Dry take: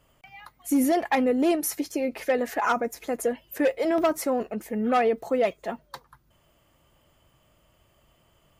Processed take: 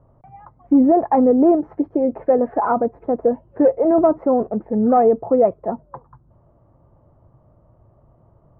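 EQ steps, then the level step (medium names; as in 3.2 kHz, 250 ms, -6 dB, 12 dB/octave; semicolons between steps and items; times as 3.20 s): low-pass 1 kHz 24 dB/octave; peaking EQ 110 Hz +8 dB 0.7 oct; +8.5 dB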